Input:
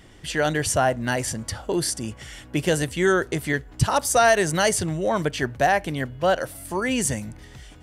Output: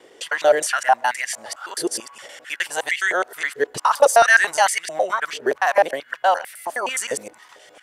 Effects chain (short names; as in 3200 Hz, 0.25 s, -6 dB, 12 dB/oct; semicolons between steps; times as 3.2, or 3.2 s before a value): local time reversal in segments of 0.104 s; stepped high-pass 4.5 Hz 450–2000 Hz